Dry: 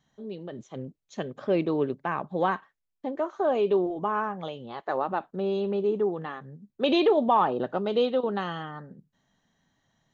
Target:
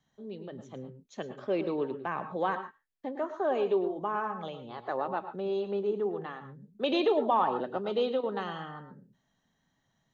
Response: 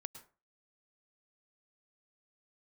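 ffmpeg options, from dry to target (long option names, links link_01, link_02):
-filter_complex "[0:a]asettb=1/sr,asplit=3[link_01][link_02][link_03];[link_01]atrim=end=2.544[link_04];[link_02]atrim=start=2.54:end=3.6,asetpts=PTS-STARTPTS,afade=type=in:duration=0.004:curve=qsin,afade=type=out:start_time=1.056:duration=0.004:curve=qsin,equalizer=frequency=1800:width_type=o:width=0.4:gain=6[link_05];[link_03]atrim=start=3.596[link_06];[link_04][link_05]acrossfade=duration=0.004:curve1=hsin:curve2=qsin[link_07];[link_07][link_06]acrossfade=duration=0.004:curve1=qsin:curve2=hsin,acrossover=split=250|3100[link_08][link_09][link_10];[link_08]alimiter=level_in=13dB:limit=-24dB:level=0:latency=1:release=469,volume=-13dB[link_11];[link_11][link_09][link_10]amix=inputs=3:normalize=0[link_12];[1:a]atrim=start_sample=2205,atrim=end_sample=6615[link_13];[link_12][link_13]afir=irnorm=-1:irlink=0"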